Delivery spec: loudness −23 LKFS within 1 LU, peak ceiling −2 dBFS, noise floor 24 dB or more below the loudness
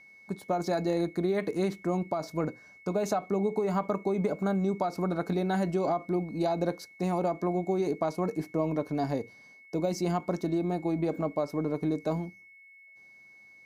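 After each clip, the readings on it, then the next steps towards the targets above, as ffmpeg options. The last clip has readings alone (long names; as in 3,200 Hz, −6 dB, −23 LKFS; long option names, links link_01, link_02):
interfering tone 2,200 Hz; level of the tone −52 dBFS; integrated loudness −30.5 LKFS; sample peak −17.0 dBFS; target loudness −23.0 LKFS
→ -af "bandreject=frequency=2200:width=30"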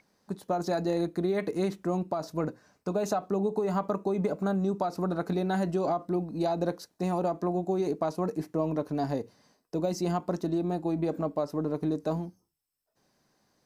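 interfering tone none found; integrated loudness −30.5 LKFS; sample peak −17.5 dBFS; target loudness −23.0 LKFS
→ -af "volume=7.5dB"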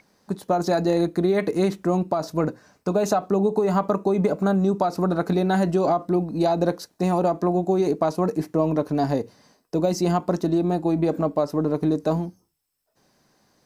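integrated loudness −23.0 LKFS; sample peak −10.0 dBFS; background noise floor −70 dBFS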